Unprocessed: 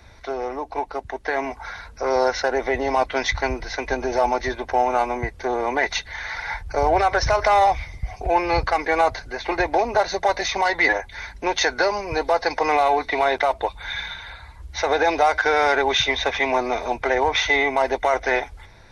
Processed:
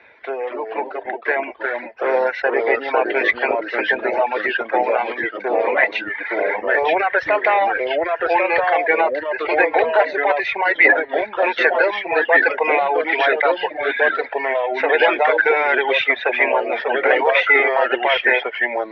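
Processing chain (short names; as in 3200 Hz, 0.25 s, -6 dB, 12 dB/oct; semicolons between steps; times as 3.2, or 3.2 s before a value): echoes that change speed 0.202 s, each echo -2 st, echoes 2; speaker cabinet 410–2800 Hz, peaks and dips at 470 Hz +4 dB, 760 Hz -4 dB, 1200 Hz -6 dB, 1700 Hz +4 dB, 2500 Hz +7 dB; reverb removal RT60 1 s; gain +4 dB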